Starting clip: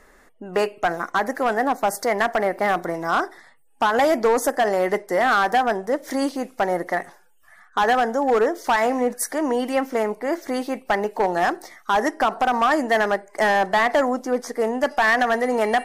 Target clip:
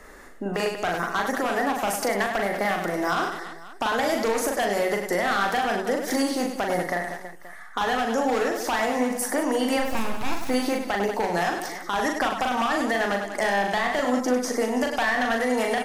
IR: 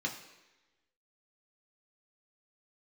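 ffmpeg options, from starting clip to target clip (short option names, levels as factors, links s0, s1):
-filter_complex "[0:a]acrossover=split=180|2000[s0][s1][s2];[s0]acompressor=threshold=0.00891:ratio=4[s3];[s1]acompressor=threshold=0.0316:ratio=4[s4];[s2]acompressor=threshold=0.0178:ratio=4[s5];[s3][s4][s5]amix=inputs=3:normalize=0,asplit=3[s6][s7][s8];[s6]afade=t=out:st=9.79:d=0.02[s9];[s7]aeval=exprs='abs(val(0))':c=same,afade=t=in:st=9.79:d=0.02,afade=t=out:st=10.48:d=0.02[s10];[s8]afade=t=in:st=10.48:d=0.02[s11];[s9][s10][s11]amix=inputs=3:normalize=0,aecho=1:1:40|100|190|325|527.5:0.631|0.398|0.251|0.158|0.1,alimiter=limit=0.112:level=0:latency=1:release=117,volume=1.78"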